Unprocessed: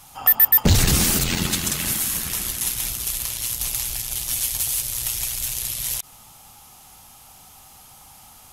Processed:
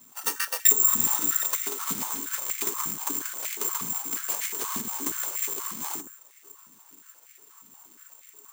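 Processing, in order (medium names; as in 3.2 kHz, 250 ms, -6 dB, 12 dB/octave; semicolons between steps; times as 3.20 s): bit-reversed sample order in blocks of 256 samples; resonant high shelf 1.5 kHz -11 dB, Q 1.5; transient shaper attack +11 dB, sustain -1 dB; compression 3:1, threshold -21 dBFS, peak gain reduction 11 dB; static phaser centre 2.4 kHz, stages 6; on a send at -1.5 dB: reverberation RT60 0.40 s, pre-delay 7 ms; on the sum: careless resampling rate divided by 6×, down none, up zero stuff; step-sequenced high-pass 8.4 Hz 210–2100 Hz; trim -9.5 dB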